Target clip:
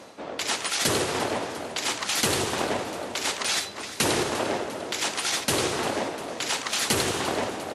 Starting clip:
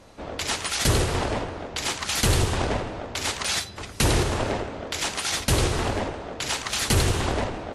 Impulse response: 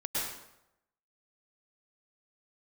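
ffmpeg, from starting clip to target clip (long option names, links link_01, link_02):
-af "highpass=220,areverse,acompressor=mode=upward:threshold=-31dB:ratio=2.5,areverse,aecho=1:1:349|698|1047|1396|1745|2094:0.2|0.114|0.0648|0.037|0.0211|0.012"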